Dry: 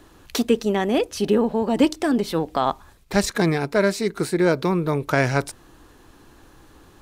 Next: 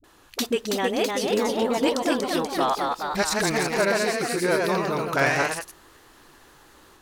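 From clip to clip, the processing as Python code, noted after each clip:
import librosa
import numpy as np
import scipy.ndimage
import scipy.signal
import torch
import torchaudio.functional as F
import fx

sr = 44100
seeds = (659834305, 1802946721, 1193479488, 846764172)

y = fx.low_shelf(x, sr, hz=370.0, db=-12.0)
y = fx.dispersion(y, sr, late='highs', ms=40.0, hz=350.0)
y = fx.echo_pitch(y, sr, ms=348, semitones=1, count=3, db_per_echo=-3.0)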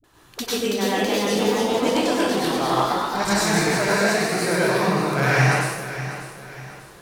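y = fx.peak_eq(x, sr, hz=130.0, db=11.5, octaves=0.41)
y = fx.echo_feedback(y, sr, ms=593, feedback_pct=39, wet_db=-12.5)
y = fx.rev_plate(y, sr, seeds[0], rt60_s=0.66, hf_ratio=1.0, predelay_ms=85, drr_db=-6.0)
y = y * librosa.db_to_amplitude(-4.0)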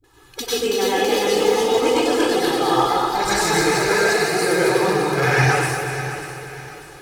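y = fx.spec_quant(x, sr, step_db=15)
y = y + 0.67 * np.pad(y, (int(2.4 * sr / 1000.0), 0))[:len(y)]
y = fx.echo_feedback(y, sr, ms=244, feedback_pct=55, wet_db=-9.0)
y = y * librosa.db_to_amplitude(1.0)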